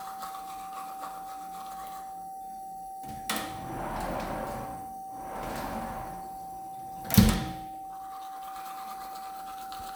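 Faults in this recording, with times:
whistle 770 Hz −38 dBFS

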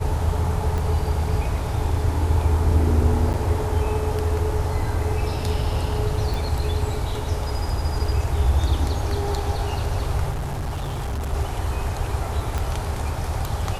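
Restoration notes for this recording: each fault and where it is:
0:00.78: click
0:03.33–0:03.34: drop-out 9.1 ms
0:06.34: click
0:10.30–0:11.34: clipping −23.5 dBFS
0:12.58: click −13 dBFS

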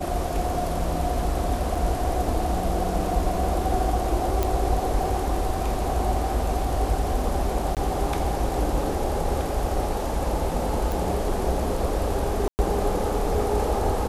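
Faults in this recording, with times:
0:01.75: drop-out 4 ms
0:04.43: click
0:07.75–0:07.77: drop-out 18 ms
0:10.92: click
0:12.48–0:12.59: drop-out 109 ms

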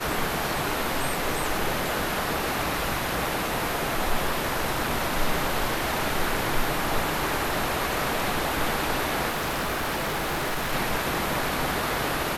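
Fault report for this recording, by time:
0:09.29–0:10.73: clipping −24 dBFS

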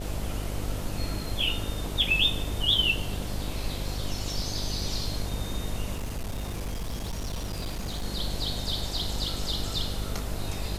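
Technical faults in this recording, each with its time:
mains buzz 50 Hz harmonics 14 −35 dBFS
0:05.94–0:08.05: clipping −28.5 dBFS

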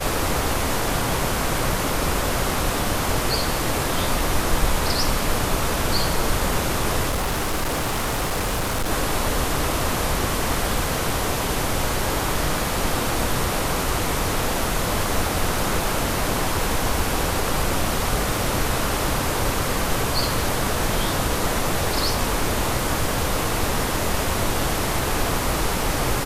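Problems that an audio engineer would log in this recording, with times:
0:07.09–0:08.91: clipping −19.5 dBFS

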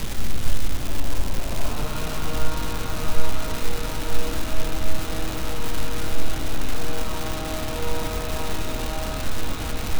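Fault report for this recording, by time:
surface crackle 580 per second −22 dBFS

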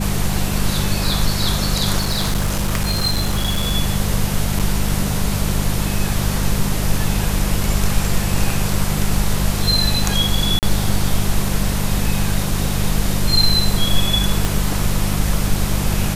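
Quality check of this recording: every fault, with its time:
mains hum 50 Hz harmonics 4 −22 dBFS
0:01.97–0:03.72: clipping −14 dBFS
0:04.59–0:04.60: drop-out 7.6 ms
0:10.59–0:10.63: drop-out 38 ms
0:14.45: click

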